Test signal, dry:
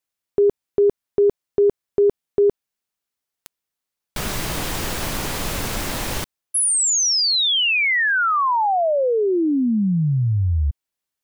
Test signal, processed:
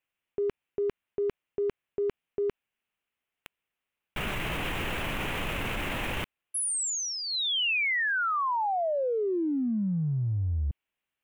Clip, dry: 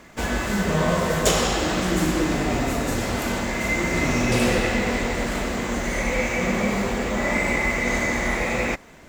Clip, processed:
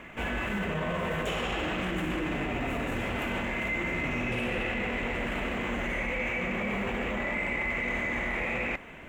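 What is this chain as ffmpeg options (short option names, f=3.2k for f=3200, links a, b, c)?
-af "highshelf=f=3.6k:t=q:w=3:g=-9.5,areverse,acompressor=threshold=-27dB:ratio=6:attack=0.87:release=41:knee=1:detection=rms,areverse"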